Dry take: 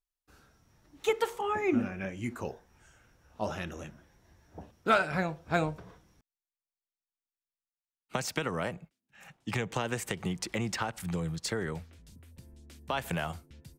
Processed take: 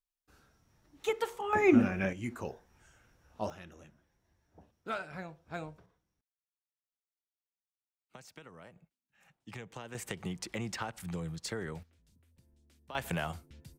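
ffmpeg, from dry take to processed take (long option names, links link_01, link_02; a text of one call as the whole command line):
ffmpeg -i in.wav -af "asetnsamples=nb_out_samples=441:pad=0,asendcmd='1.53 volume volume 4.5dB;2.13 volume volume -2.5dB;3.5 volume volume -12.5dB;5.86 volume volume -19.5dB;8.76 volume volume -13dB;9.95 volume volume -5dB;11.83 volume volume -14dB;12.95 volume volume -1.5dB',volume=-4dB" out.wav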